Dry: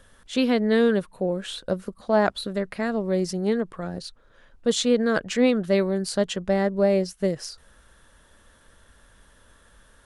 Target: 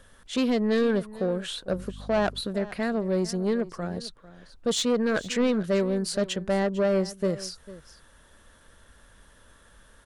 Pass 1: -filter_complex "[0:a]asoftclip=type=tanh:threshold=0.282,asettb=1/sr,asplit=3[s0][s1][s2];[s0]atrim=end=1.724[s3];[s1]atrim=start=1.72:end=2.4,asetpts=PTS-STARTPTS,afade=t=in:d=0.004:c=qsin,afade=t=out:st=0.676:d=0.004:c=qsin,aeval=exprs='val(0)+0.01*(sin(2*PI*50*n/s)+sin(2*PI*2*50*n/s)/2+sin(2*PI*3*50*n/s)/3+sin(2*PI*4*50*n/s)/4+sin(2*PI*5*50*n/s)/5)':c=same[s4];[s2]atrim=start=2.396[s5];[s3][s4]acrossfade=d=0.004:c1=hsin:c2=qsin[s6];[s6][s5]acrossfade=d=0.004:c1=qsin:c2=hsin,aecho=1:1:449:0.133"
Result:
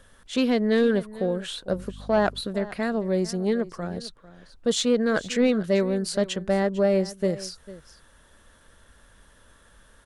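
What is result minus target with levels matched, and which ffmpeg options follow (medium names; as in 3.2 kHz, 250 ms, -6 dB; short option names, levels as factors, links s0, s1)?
saturation: distortion -9 dB
-filter_complex "[0:a]asoftclip=type=tanh:threshold=0.126,asettb=1/sr,asplit=3[s0][s1][s2];[s0]atrim=end=1.724[s3];[s1]atrim=start=1.72:end=2.4,asetpts=PTS-STARTPTS,afade=t=in:d=0.004:c=qsin,afade=t=out:st=0.676:d=0.004:c=qsin,aeval=exprs='val(0)+0.01*(sin(2*PI*50*n/s)+sin(2*PI*2*50*n/s)/2+sin(2*PI*3*50*n/s)/3+sin(2*PI*4*50*n/s)/4+sin(2*PI*5*50*n/s)/5)':c=same[s4];[s2]atrim=start=2.396[s5];[s3][s4]acrossfade=d=0.004:c1=hsin:c2=qsin[s6];[s6][s5]acrossfade=d=0.004:c1=qsin:c2=hsin,aecho=1:1:449:0.133"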